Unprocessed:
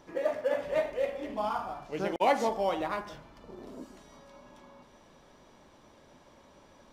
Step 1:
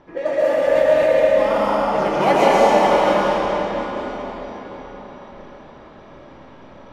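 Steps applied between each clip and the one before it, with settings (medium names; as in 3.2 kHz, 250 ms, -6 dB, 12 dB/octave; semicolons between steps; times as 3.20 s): algorithmic reverb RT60 4.8 s, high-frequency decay 0.85×, pre-delay 85 ms, DRR -8.5 dB; level-controlled noise filter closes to 2.5 kHz, open at -20 dBFS; trim +6 dB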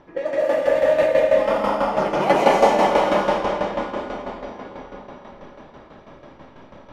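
tremolo saw down 6.1 Hz, depth 65%; trim +1 dB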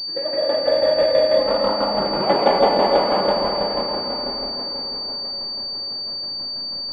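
echo whose repeats swap between lows and highs 299 ms, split 820 Hz, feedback 53%, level -4.5 dB; class-D stage that switches slowly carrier 4.6 kHz; trim -1.5 dB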